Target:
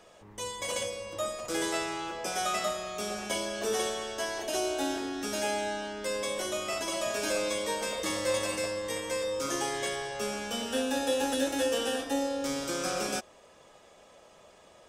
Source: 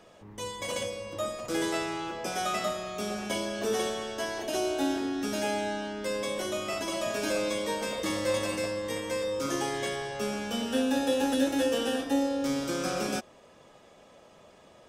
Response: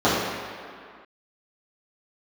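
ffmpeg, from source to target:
-af "equalizer=f=125:t=o:w=1:g=-5,equalizer=f=250:t=o:w=1:g=-5,equalizer=f=8k:t=o:w=1:g=4"

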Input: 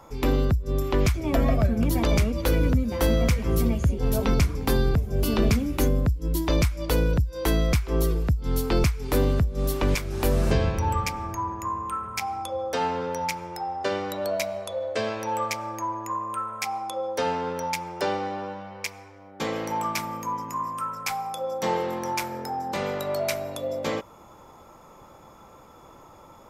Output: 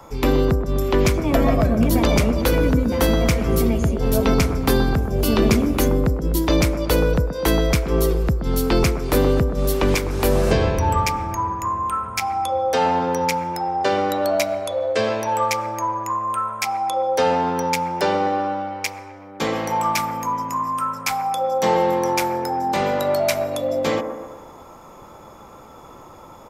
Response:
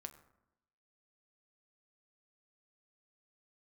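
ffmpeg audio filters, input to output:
-filter_complex "[0:a]acrossover=split=170|1600|2200[a][b][c][d];[a]alimiter=limit=-22dB:level=0:latency=1[e];[b]aecho=1:1:126|252|378|504|630|756:0.501|0.256|0.13|0.0665|0.0339|0.0173[f];[e][f][c][d]amix=inputs=4:normalize=0,volume=6dB"

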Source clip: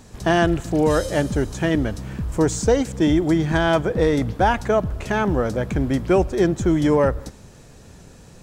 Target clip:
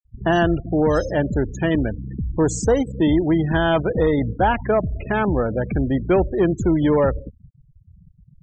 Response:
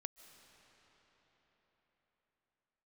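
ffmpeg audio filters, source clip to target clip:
-af "aeval=exprs='0.531*(cos(1*acos(clip(val(0)/0.531,-1,1)))-cos(1*PI/2))+0.0119*(cos(5*acos(clip(val(0)/0.531,-1,1)))-cos(5*PI/2))':c=same,volume=10.5dB,asoftclip=hard,volume=-10.5dB,afftfilt=real='re*gte(hypot(re,im),0.0501)':imag='im*gte(hypot(re,im),0.0501)':win_size=1024:overlap=0.75"

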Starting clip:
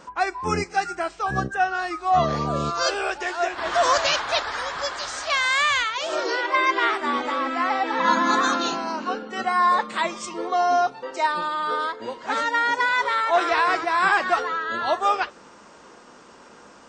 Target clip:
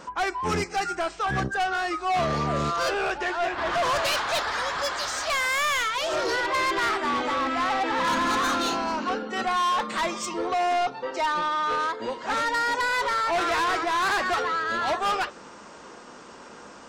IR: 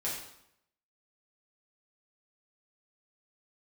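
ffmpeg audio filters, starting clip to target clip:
-filter_complex "[0:a]asettb=1/sr,asplit=3[a][b][c];[a]atrim=end=2.764[d];[b]atrim=start=2.76:end=4.05,asetpts=PTS-STARTPTS,afade=t=in:d=0.004:c=qsin,afade=t=out:st=1.286:d=0.004:c=qsin,bass=f=250:g=4,treble=f=4k:g=-9[e];[c]atrim=start=4.046[f];[d][e]acrossfade=d=0.004:c1=hsin:c2=qsin[g];[g][f]acrossfade=d=0.004:c1=qsin:c2=hsin,asettb=1/sr,asplit=3[h][i][j];[h]atrim=end=10.734[k];[i]atrim=start=10.73:end=11.73,asetpts=PTS-STARTPTS,afade=t=in:d=0.004:c=qsin,afade=t=out:st=0.996:d=0.004:c=qsin,lowpass=5.7k[l];[j]atrim=start=11.726[m];[k][l]acrossfade=d=0.004:c1=hsin:c2=qsin[n];[n][m]acrossfade=d=0.004:c1=qsin:c2=hsin,asoftclip=type=tanh:threshold=-24.5dB,volume=3dB"

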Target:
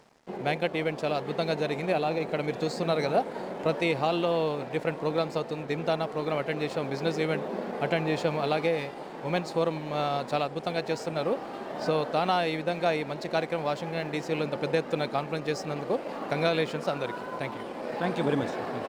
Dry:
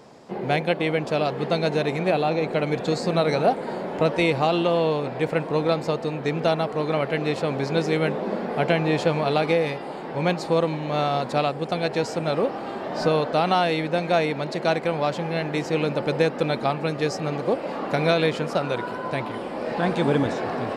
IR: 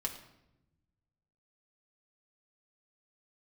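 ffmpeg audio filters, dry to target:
-af "atempo=1.1,areverse,acompressor=mode=upward:threshold=-38dB:ratio=2.5,areverse,highpass=f=120:p=1,aeval=exprs='sgn(val(0))*max(abs(val(0))-0.00398,0)':c=same,volume=-4.5dB"

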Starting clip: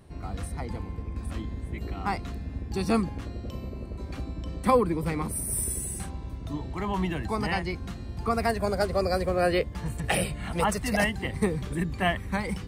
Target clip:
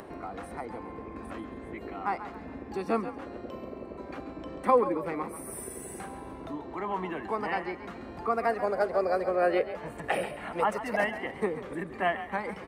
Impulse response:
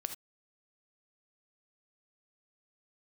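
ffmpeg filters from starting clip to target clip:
-filter_complex "[0:a]acrossover=split=260 2200:gain=0.0708 1 0.158[a][b][c];[a][b][c]amix=inputs=3:normalize=0,acompressor=mode=upward:threshold=-33dB:ratio=2.5,asplit=2[d][e];[e]asplit=4[f][g][h][i];[f]adelay=136,afreqshift=43,volume=-12dB[j];[g]adelay=272,afreqshift=86,volume=-19.7dB[k];[h]adelay=408,afreqshift=129,volume=-27.5dB[l];[i]adelay=544,afreqshift=172,volume=-35.2dB[m];[j][k][l][m]amix=inputs=4:normalize=0[n];[d][n]amix=inputs=2:normalize=0"

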